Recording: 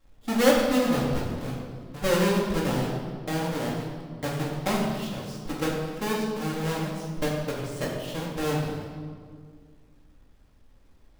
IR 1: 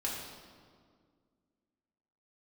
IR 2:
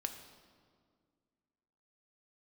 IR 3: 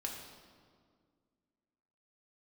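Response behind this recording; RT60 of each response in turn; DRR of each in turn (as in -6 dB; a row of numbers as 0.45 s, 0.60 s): 1; 2.0 s, 2.0 s, 2.0 s; -5.0 dB, 5.5 dB, -1.0 dB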